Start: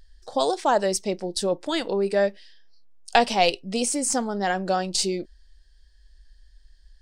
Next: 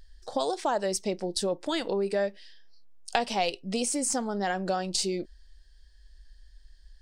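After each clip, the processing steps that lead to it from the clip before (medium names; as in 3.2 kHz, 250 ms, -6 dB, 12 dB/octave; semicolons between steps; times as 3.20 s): compression 2.5:1, threshold -27 dBFS, peak gain reduction 10 dB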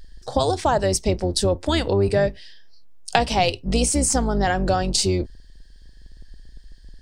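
octave divider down 2 oct, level +2 dB; trim +7.5 dB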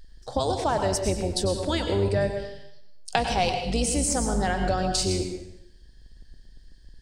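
plate-style reverb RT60 0.79 s, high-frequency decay 0.95×, pre-delay 85 ms, DRR 5 dB; trim -5.5 dB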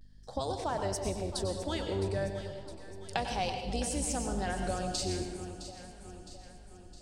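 hum 50 Hz, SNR 23 dB; vibrato 0.35 Hz 34 cents; echo whose repeats swap between lows and highs 331 ms, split 840 Hz, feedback 73%, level -10 dB; trim -9 dB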